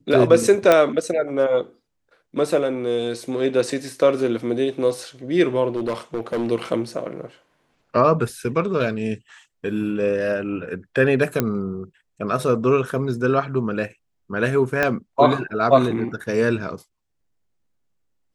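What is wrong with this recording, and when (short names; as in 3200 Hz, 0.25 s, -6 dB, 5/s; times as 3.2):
0.72 pop -3 dBFS
5.76–6.51 clipped -19.5 dBFS
11.4 pop -6 dBFS
14.83 pop -7 dBFS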